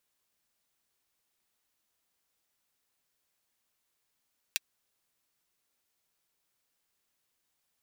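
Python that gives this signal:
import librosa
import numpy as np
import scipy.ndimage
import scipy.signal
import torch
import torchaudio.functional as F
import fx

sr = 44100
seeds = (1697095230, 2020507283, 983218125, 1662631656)

y = fx.drum_hat(sr, length_s=0.24, from_hz=2400.0, decay_s=0.03)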